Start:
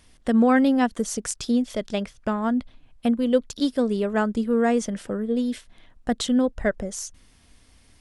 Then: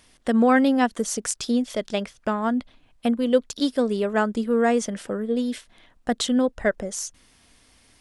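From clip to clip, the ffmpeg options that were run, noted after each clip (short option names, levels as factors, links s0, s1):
-af "lowshelf=f=170:g=-10,volume=1.33"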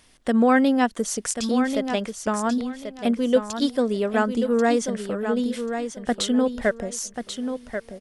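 -af "aecho=1:1:1087|2174|3261:0.398|0.0836|0.0176"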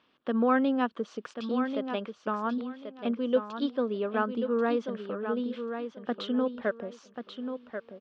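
-af "highpass=220,equalizer=f=710:t=q:w=4:g=-5,equalizer=f=1200:t=q:w=4:g=5,equalizer=f=2000:t=q:w=4:g=-10,lowpass=f=3300:w=0.5412,lowpass=f=3300:w=1.3066,volume=0.531"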